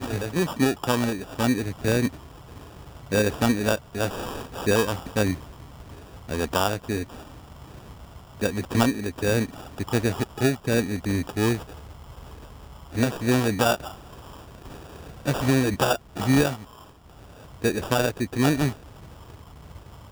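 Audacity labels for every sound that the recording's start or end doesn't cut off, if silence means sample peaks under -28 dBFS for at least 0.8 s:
3.120000	5.350000	sound
6.290000	7.040000	sound
8.420000	11.590000	sound
12.950000	13.870000	sound
15.260000	16.550000	sound
17.640000	18.710000	sound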